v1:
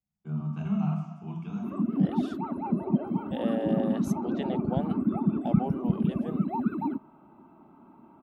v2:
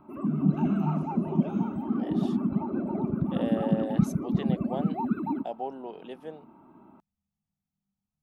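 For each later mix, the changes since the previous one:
background: entry −1.55 s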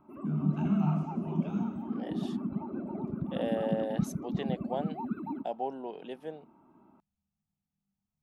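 background −7.0 dB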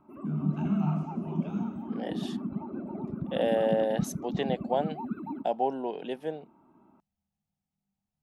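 second voice +6.5 dB

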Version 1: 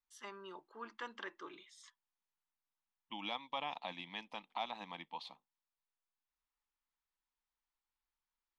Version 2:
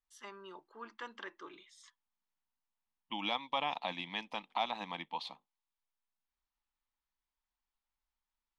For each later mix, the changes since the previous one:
second voice +6.0 dB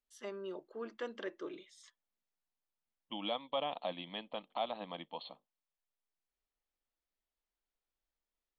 second voice: add Chebyshev low-pass with heavy ripple 4,400 Hz, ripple 9 dB
master: add low shelf with overshoot 740 Hz +7 dB, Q 3

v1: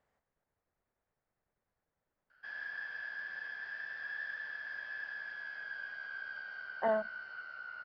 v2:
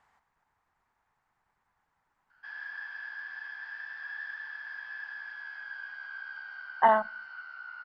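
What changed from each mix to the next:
speech +11.5 dB
master: add low shelf with overshoot 710 Hz −7 dB, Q 3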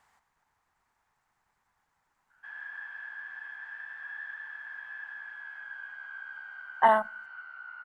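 speech: remove low-pass filter 2,700 Hz 6 dB per octave
background: remove low-pass with resonance 4,900 Hz, resonance Q 8.3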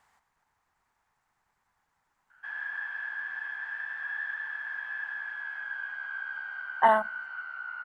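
background +6.0 dB

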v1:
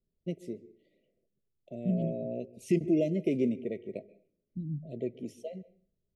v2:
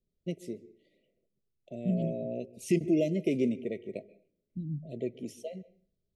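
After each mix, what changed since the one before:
master: add high-shelf EQ 2,400 Hz +7 dB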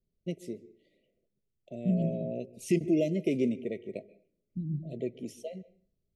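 second voice: send on

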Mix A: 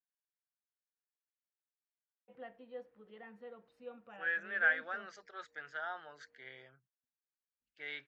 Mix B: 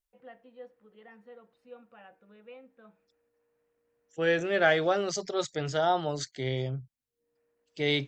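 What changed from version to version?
first voice: entry −2.15 s
second voice: remove resonant band-pass 1,600 Hz, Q 5.6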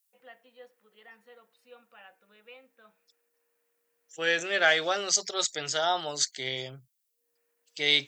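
master: add spectral tilt +4.5 dB per octave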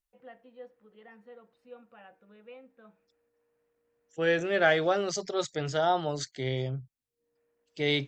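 master: add spectral tilt −4.5 dB per octave

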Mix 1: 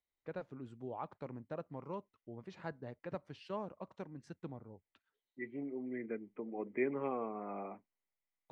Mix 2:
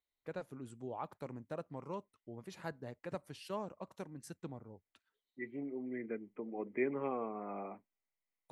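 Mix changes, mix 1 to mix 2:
first voice: remove high-frequency loss of the air 140 metres
master: add high-shelf EQ 9,700 Hz +8 dB

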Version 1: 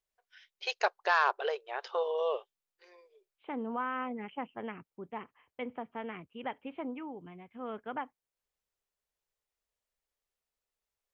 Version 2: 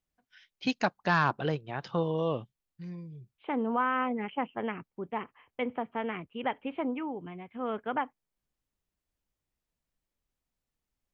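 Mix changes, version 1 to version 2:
first voice: remove linear-phase brick-wall high-pass 370 Hz
second voice +6.5 dB

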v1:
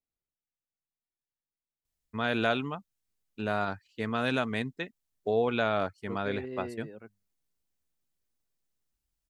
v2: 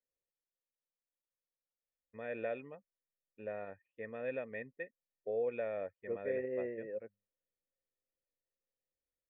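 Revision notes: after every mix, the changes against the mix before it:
second voice +11.0 dB
master: add formant resonators in series e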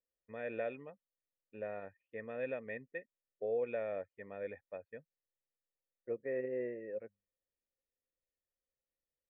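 first voice: entry −1.85 s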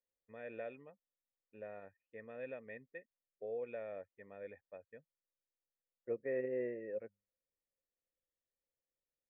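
first voice −6.5 dB

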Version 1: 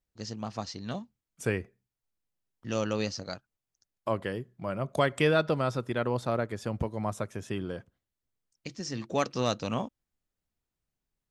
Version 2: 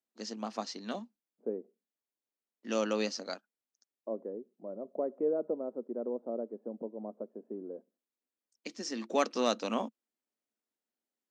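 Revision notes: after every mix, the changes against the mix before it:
second voice: add transistor ladder low-pass 660 Hz, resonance 30%
master: add elliptic high-pass filter 220 Hz, stop band 50 dB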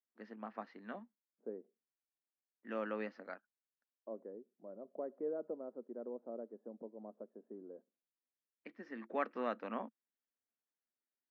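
master: add transistor ladder low-pass 2,100 Hz, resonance 50%

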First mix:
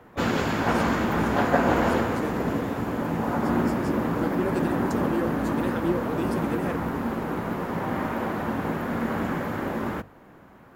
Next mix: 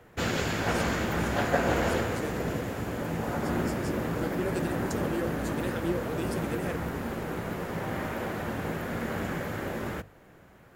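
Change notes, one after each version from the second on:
first voice: muted
master: add octave-band graphic EQ 250/1,000/8,000 Hz −8/−8/+4 dB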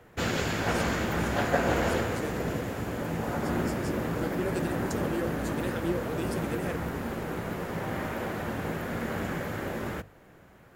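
nothing changed

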